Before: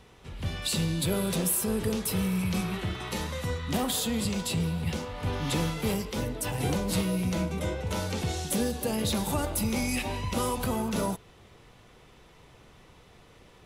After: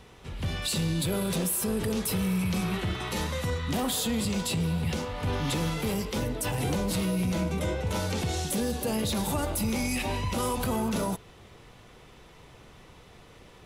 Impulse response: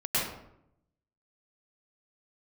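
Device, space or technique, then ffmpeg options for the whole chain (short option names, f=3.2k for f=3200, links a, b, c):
soft clipper into limiter: -af "asoftclip=type=tanh:threshold=-18dB,alimiter=limit=-24dB:level=0:latency=1:release=30,volume=3dB"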